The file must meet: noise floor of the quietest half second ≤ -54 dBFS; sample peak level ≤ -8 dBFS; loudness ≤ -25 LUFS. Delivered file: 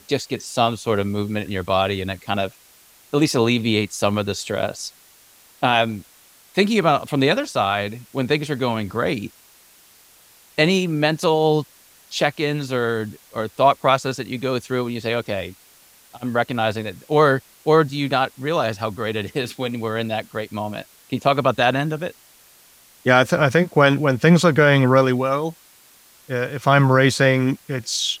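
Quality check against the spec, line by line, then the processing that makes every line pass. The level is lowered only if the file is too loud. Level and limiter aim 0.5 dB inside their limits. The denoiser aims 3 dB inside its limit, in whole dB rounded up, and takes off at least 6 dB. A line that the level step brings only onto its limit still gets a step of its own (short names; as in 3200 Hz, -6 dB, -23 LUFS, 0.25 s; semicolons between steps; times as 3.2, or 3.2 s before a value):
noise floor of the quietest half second -51 dBFS: fail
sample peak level -3.0 dBFS: fail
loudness -20.5 LUFS: fail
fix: gain -5 dB; limiter -8.5 dBFS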